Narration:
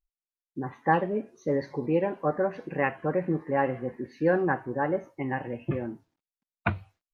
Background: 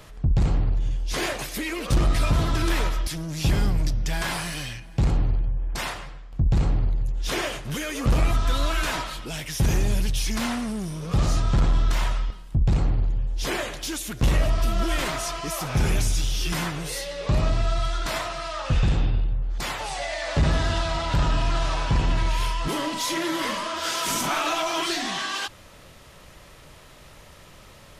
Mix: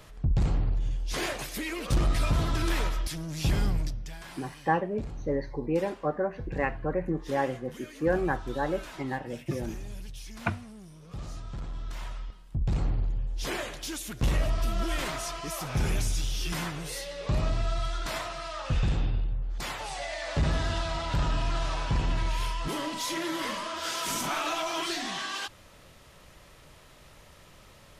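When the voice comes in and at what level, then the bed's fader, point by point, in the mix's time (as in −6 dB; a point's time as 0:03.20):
3.80 s, −2.5 dB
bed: 0:03.75 −4.5 dB
0:04.21 −17.5 dB
0:11.68 −17.5 dB
0:12.86 −5.5 dB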